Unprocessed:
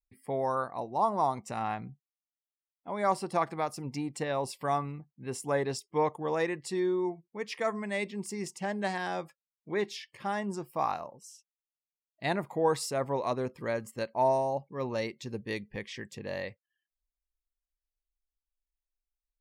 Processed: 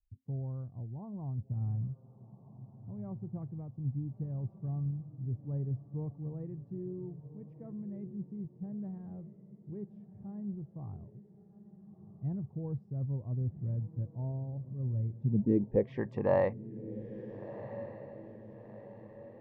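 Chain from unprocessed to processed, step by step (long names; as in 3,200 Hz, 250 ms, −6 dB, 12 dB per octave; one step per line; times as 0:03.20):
low-pass filter sweep 100 Hz → 960 Hz, 0:15.08–0:16.06
feedback delay with all-pass diffusion 1,372 ms, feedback 46%, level −13 dB
level +7.5 dB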